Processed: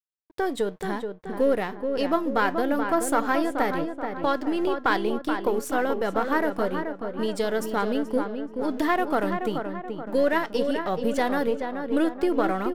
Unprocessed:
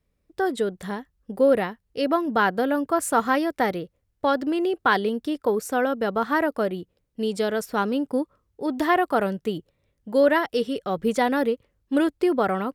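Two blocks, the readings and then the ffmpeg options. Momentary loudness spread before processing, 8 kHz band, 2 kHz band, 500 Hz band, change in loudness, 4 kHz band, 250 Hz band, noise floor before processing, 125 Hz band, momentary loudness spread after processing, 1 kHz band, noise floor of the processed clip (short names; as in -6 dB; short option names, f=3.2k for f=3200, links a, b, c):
11 LU, -2.0 dB, -2.0 dB, -1.5 dB, -2.0 dB, -2.0 dB, -1.5 dB, -74 dBFS, -1.5 dB, 7 LU, -1.5 dB, -43 dBFS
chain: -filter_complex "[0:a]aeval=exprs='if(lt(val(0),0),0.708*val(0),val(0))':c=same,asplit=2[a][b];[b]acompressor=threshold=-28dB:ratio=6,volume=2dB[c];[a][c]amix=inputs=2:normalize=0,flanger=delay=5.9:depth=1.1:regen=85:speed=0.98:shape=sinusoidal,aeval=exprs='sgn(val(0))*max(abs(val(0))-0.00251,0)':c=same,asplit=2[d][e];[e]adelay=429,lowpass=f=2.1k:p=1,volume=-6dB,asplit=2[f][g];[g]adelay=429,lowpass=f=2.1k:p=1,volume=0.51,asplit=2[h][i];[i]adelay=429,lowpass=f=2.1k:p=1,volume=0.51,asplit=2[j][k];[k]adelay=429,lowpass=f=2.1k:p=1,volume=0.51,asplit=2[l][m];[m]adelay=429,lowpass=f=2.1k:p=1,volume=0.51,asplit=2[n][o];[o]adelay=429,lowpass=f=2.1k:p=1,volume=0.51[p];[d][f][h][j][l][n][p]amix=inputs=7:normalize=0"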